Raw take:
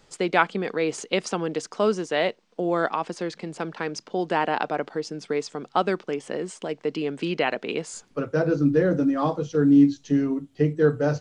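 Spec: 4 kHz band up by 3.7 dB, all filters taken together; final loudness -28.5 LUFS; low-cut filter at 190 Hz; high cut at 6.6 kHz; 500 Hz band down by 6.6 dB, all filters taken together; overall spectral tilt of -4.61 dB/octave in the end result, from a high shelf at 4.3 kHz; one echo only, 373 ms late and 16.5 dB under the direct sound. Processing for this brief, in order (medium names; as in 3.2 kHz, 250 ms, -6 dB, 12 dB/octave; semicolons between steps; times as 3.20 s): high-pass 190 Hz; low-pass 6.6 kHz; peaking EQ 500 Hz -8 dB; peaking EQ 4 kHz +4 dB; treble shelf 4.3 kHz +3.5 dB; delay 373 ms -16.5 dB; trim -0.5 dB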